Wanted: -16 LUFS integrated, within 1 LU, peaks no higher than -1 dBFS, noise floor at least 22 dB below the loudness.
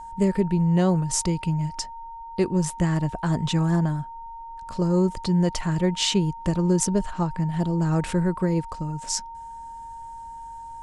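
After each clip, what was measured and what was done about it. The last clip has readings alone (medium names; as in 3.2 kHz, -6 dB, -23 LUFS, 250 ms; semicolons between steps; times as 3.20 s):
steady tone 920 Hz; tone level -36 dBFS; loudness -24.0 LUFS; peak level -5.5 dBFS; loudness target -16.0 LUFS
-> band-stop 920 Hz, Q 30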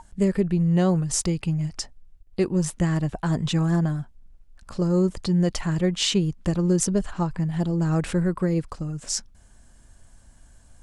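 steady tone not found; loudness -24.0 LUFS; peak level -5.0 dBFS; loudness target -16.0 LUFS
-> trim +8 dB; peak limiter -1 dBFS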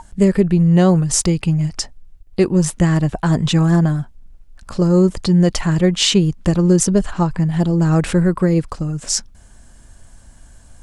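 loudness -16.0 LUFS; peak level -1.0 dBFS; noise floor -45 dBFS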